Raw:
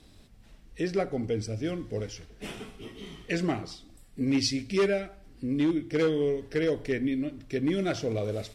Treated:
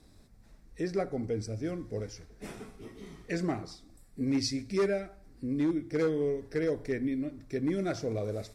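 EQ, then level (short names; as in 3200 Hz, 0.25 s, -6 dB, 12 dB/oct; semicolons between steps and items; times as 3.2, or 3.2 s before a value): bell 3000 Hz -13.5 dB 0.48 oct; -3.0 dB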